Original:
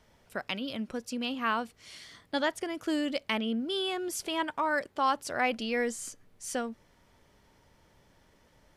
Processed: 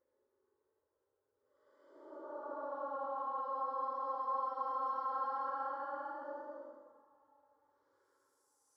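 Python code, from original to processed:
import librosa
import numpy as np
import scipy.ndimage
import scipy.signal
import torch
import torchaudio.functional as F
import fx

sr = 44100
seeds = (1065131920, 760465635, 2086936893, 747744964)

y = fx.filter_sweep_bandpass(x, sr, from_hz=270.0, to_hz=2200.0, start_s=4.11, end_s=6.3, q=1.9)
y = fx.paulstretch(y, sr, seeds[0], factor=25.0, window_s=0.05, from_s=4.89)
y = fx.fixed_phaser(y, sr, hz=720.0, stages=6)
y = y * librosa.db_to_amplitude(-5.0)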